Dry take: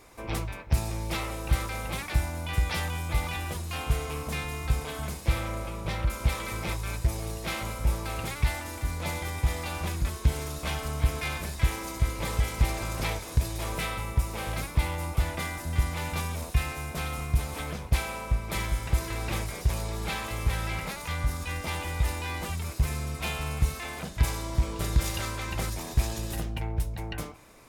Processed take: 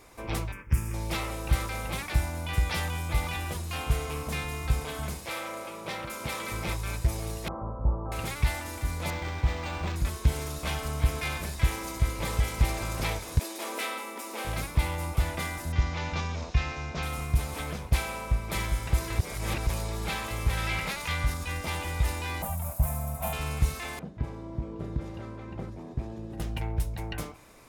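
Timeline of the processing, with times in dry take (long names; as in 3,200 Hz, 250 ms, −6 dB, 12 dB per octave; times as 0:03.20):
0:00.52–0:00.94: phaser with its sweep stopped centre 1,700 Hz, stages 4
0:05.25–0:06.49: high-pass filter 450 Hz → 150 Hz
0:07.48–0:08.12: Butterworth low-pass 1,200 Hz 48 dB per octave
0:09.10–0:09.96: linearly interpolated sample-rate reduction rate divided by 4×
0:13.39–0:14.45: linear-phase brick-wall high-pass 210 Hz
0:15.72–0:17.03: Butterworth low-pass 6,500 Hz 48 dB per octave
0:19.19–0:19.67: reverse
0:20.57–0:21.34: parametric band 2,800 Hz +5.5 dB 2 octaves
0:22.42–0:23.33: drawn EQ curve 220 Hz 0 dB, 380 Hz −19 dB, 630 Hz +9 dB, 1,800 Hz −9 dB, 4,600 Hz −15 dB, 14,000 Hz +12 dB
0:23.99–0:26.40: resonant band-pass 250 Hz, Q 0.8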